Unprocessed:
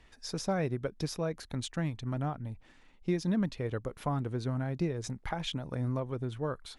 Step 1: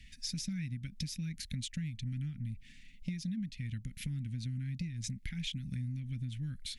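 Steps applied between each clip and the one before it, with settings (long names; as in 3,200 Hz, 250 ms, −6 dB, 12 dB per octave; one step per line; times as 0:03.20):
elliptic band-stop filter 220–2,100 Hz, stop band 40 dB
downward compressor 10 to 1, threshold −42 dBFS, peak gain reduction 15 dB
level +7 dB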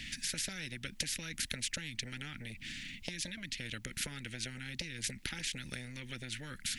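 high-shelf EQ 3,400 Hz −8.5 dB
every bin compressed towards the loudest bin 4 to 1
level +8.5 dB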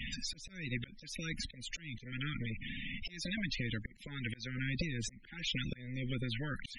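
rotating-speaker cabinet horn 0.85 Hz
spectral peaks only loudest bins 32
volume swells 301 ms
level +10 dB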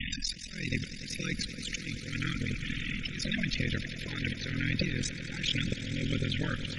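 ring modulation 21 Hz
echo that builds up and dies away 96 ms, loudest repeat 5, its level −15.5 dB
level +8.5 dB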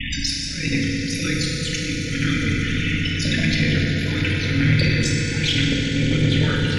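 feedback delay network reverb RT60 3 s, high-frequency decay 0.65×, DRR −4 dB
soft clipping −15 dBFS, distortion −23 dB
level +7.5 dB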